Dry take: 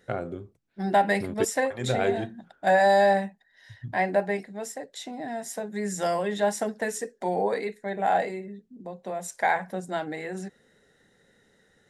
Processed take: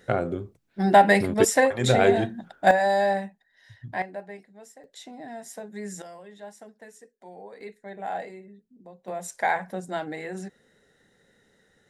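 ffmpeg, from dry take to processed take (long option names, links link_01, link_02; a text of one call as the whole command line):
ffmpeg -i in.wav -af "asetnsamples=nb_out_samples=441:pad=0,asendcmd='2.71 volume volume -3dB;4.02 volume volume -13dB;4.84 volume volume -5.5dB;6.02 volume volume -18dB;7.61 volume volume -8.5dB;9.08 volume volume -0.5dB',volume=6dB" out.wav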